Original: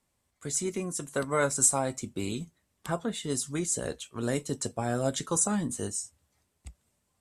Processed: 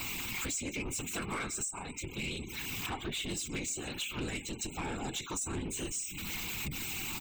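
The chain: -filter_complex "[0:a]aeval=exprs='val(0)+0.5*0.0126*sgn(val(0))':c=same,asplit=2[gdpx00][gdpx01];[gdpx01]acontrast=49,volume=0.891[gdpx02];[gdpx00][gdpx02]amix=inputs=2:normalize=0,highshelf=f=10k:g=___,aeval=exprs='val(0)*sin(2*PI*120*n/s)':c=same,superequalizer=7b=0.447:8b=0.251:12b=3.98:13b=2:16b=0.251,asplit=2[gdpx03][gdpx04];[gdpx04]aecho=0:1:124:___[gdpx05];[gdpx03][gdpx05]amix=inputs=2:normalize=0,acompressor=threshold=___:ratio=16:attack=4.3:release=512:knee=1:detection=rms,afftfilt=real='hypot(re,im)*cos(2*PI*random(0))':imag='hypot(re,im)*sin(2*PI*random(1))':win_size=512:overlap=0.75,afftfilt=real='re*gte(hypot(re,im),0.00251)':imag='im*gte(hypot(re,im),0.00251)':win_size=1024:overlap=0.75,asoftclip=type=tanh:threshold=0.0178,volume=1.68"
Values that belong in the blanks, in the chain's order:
8.5, 0.0794, 0.0562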